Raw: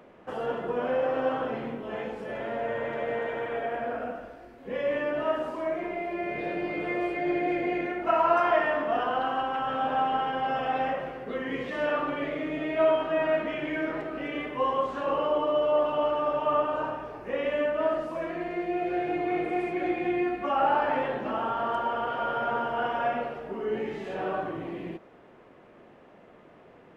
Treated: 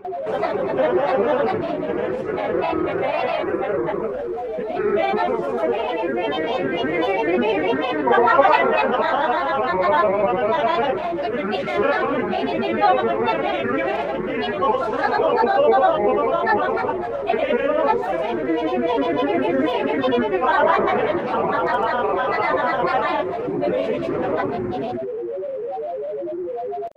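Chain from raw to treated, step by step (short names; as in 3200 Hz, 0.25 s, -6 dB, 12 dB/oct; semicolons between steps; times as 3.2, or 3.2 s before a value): whine 510 Hz -32 dBFS; grains, pitch spread up and down by 7 st; reverse echo 0.545 s -21.5 dB; gain +9 dB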